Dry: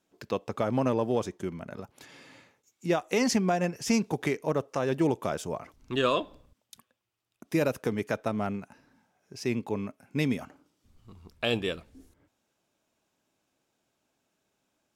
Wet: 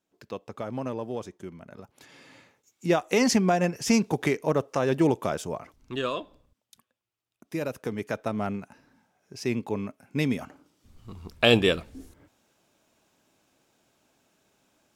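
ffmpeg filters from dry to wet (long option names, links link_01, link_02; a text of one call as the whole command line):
ffmpeg -i in.wav -af "volume=17.5dB,afade=type=in:start_time=1.68:duration=1.18:silence=0.334965,afade=type=out:start_time=5.09:duration=1.05:silence=0.375837,afade=type=in:start_time=7.6:duration=0.91:silence=0.473151,afade=type=in:start_time=10.32:duration=0.99:silence=0.421697" out.wav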